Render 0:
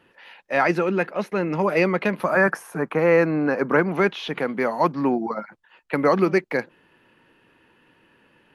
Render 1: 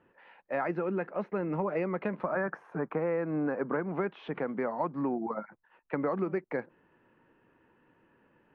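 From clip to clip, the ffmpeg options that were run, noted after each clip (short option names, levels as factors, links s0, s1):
-af "lowpass=1500,acompressor=threshold=0.0794:ratio=5,volume=0.531"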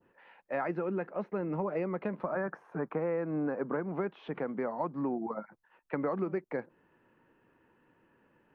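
-af "adynamicequalizer=threshold=0.00355:dfrequency=2100:dqfactor=0.77:tfrequency=2100:tqfactor=0.77:attack=5:release=100:ratio=0.375:range=2:mode=cutabove:tftype=bell,volume=0.841"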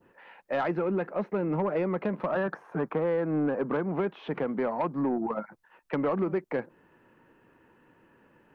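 -af "aeval=exprs='(tanh(20*val(0)+0.05)-tanh(0.05))/20':c=same,volume=2.11"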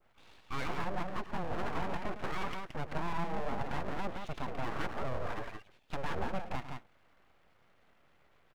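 -af "aecho=1:1:105|172:0.251|0.562,aeval=exprs='abs(val(0))':c=same,volume=0.531"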